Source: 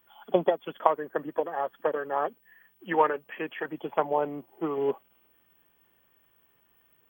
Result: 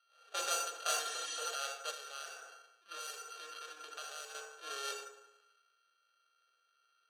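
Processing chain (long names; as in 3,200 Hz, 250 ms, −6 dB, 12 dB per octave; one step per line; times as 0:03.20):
samples sorted by size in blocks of 32 samples
feedback delay network reverb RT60 0.93 s, low-frequency decay 1.05×, high-frequency decay 0.6×, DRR 5 dB
transient designer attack −8 dB, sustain +7 dB
soft clipping −15.5 dBFS, distortion −22 dB
high-pass filter 270 Hz 24 dB per octave
high-shelf EQ 4,600 Hz −11 dB
phaser with its sweep stopped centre 1,400 Hz, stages 8
decimation without filtering 6×
low-pass that shuts in the quiet parts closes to 2,900 Hz, open at −18 dBFS
0:01.07–0:01.45: healed spectral selection 1,700–11,000 Hz
0:01.90–0:04.35: downward compressor 12 to 1, threshold −37 dBFS, peak gain reduction 13 dB
first difference
level +8.5 dB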